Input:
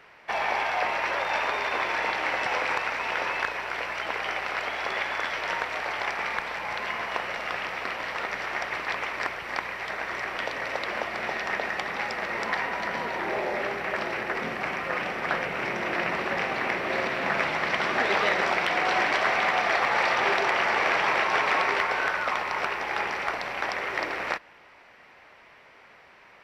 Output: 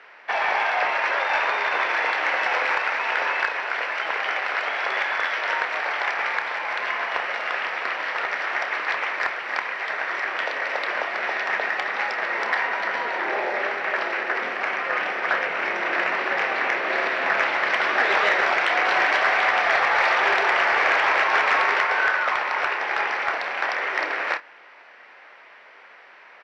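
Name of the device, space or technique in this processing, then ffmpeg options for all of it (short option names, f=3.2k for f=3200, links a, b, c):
intercom: -filter_complex "[0:a]highpass=400,lowpass=4.9k,equalizer=f=1.6k:t=o:w=0.58:g=4,asoftclip=type=tanh:threshold=-12.5dB,asplit=2[a][b];[b]adelay=29,volume=-11.5dB[c];[a][c]amix=inputs=2:normalize=0,asettb=1/sr,asplit=3[d][e][f];[d]atrim=end=13.974[g];[e]atrim=start=13.97:end=14.76,asetpts=PTS-STARTPTS,afade=t=in:d=0.004:c=qsin,afade=t=out:st=0.786:d=0.004:c=qsin,highpass=160[h];[f]atrim=start=14.756[i];[g][h]acrossfade=d=0.004:c1=hsin:c2=qsin[j];[j][i]acrossfade=d=0.004:c1=qsin:c2=hsin,volume=3.5dB"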